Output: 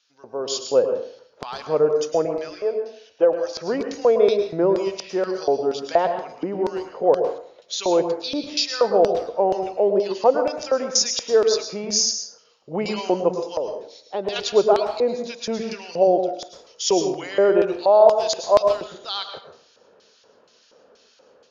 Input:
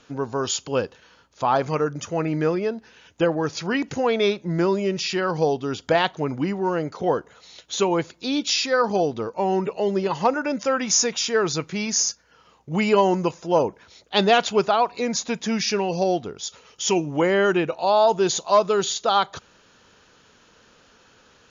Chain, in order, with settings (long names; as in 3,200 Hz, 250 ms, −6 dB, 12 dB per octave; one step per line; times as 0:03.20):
auto-filter band-pass square 2.1 Hz 540–4,900 Hz
0:02.25–0:03.49: parametric band 190 Hz −13 dB 1.3 octaves
0:13.43–0:14.36: downward compressor 2.5 to 1, threshold −36 dBFS, peak gain reduction 11.5 dB
high-shelf EQ 5,500 Hz −6.5 dB
automatic gain control gain up to 9.5 dB
convolution reverb RT60 0.55 s, pre-delay 98 ms, DRR 6.5 dB
level −1 dB